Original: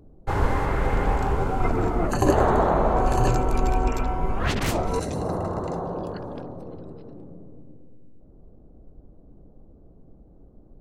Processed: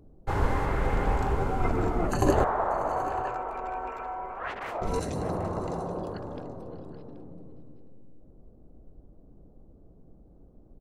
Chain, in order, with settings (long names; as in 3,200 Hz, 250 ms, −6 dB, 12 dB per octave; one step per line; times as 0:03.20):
0:02.44–0:04.82: three-way crossover with the lows and the highs turned down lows −23 dB, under 510 Hz, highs −22 dB, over 2,200 Hz
multi-tap delay 591/779 ms −19.5/−16.5 dB
level −3.5 dB